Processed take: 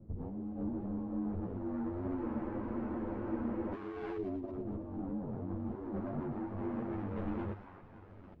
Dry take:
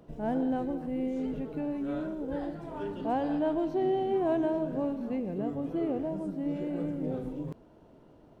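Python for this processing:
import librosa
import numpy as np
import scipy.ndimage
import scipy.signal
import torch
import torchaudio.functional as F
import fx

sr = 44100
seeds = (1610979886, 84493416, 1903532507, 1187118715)

p1 = fx.halfwave_hold(x, sr)
p2 = fx.echo_wet_bandpass(p1, sr, ms=278, feedback_pct=37, hz=1500.0, wet_db=-11.5)
p3 = fx.filter_lfo_lowpass(p2, sr, shape='saw_up', hz=0.24, low_hz=330.0, high_hz=1600.0, q=0.81)
p4 = p3 + fx.echo_wet_highpass(p3, sr, ms=113, feedback_pct=57, hz=2800.0, wet_db=-10.5, dry=0)
p5 = p4 * np.sin(2.0 * np.pi * 47.0 * np.arange(len(p4)) / sr)
p6 = fx.peak_eq(p5, sr, hz=98.0, db=12.0, octaves=0.23)
p7 = fx.over_compress(p6, sr, threshold_db=-34.0, ratio=-1.0)
p8 = 10.0 ** (-28.5 / 20.0) * np.tanh(p7 / 10.0 ** (-28.5 / 20.0))
p9 = fx.spec_freeze(p8, sr, seeds[0], at_s=2.22, hold_s=1.51)
y = fx.ensemble(p9, sr)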